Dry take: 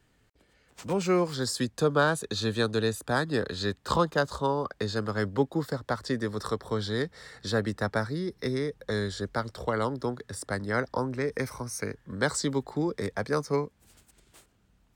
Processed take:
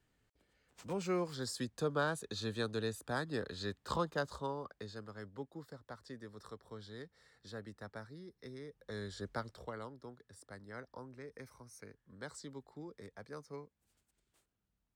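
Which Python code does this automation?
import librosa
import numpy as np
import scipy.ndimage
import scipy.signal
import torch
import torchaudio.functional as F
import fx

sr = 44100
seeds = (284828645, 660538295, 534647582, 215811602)

y = fx.gain(x, sr, db=fx.line((4.29, -10.5), (5.17, -19.5), (8.55, -19.5), (9.33, -9.0), (9.94, -20.0)))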